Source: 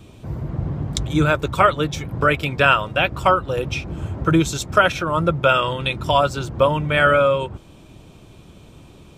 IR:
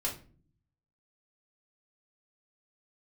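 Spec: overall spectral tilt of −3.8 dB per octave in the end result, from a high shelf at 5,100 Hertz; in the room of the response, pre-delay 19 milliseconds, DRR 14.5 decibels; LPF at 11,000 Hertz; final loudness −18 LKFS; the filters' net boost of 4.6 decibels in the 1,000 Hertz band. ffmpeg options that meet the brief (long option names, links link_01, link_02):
-filter_complex "[0:a]lowpass=11000,equalizer=frequency=1000:width_type=o:gain=6.5,highshelf=frequency=5100:gain=-3.5,asplit=2[link_01][link_02];[1:a]atrim=start_sample=2205,adelay=19[link_03];[link_02][link_03]afir=irnorm=-1:irlink=0,volume=-18dB[link_04];[link_01][link_04]amix=inputs=2:normalize=0,volume=-1.5dB"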